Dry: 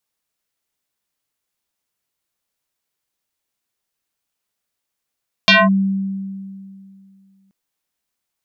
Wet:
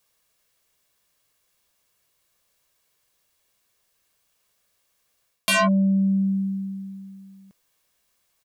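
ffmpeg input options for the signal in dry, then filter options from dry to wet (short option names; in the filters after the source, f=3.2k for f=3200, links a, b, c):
-f lavfi -i "aevalsrc='0.501*pow(10,-3*t/2.48)*sin(2*PI*194*t+5*clip(1-t/0.21,0,1)*sin(2*PI*4.42*194*t))':d=2.03:s=44100"
-af "aeval=exprs='0.501*sin(PI/2*1.78*val(0)/0.501)':c=same,aecho=1:1:1.8:0.35,areverse,acompressor=threshold=-19dB:ratio=5,areverse"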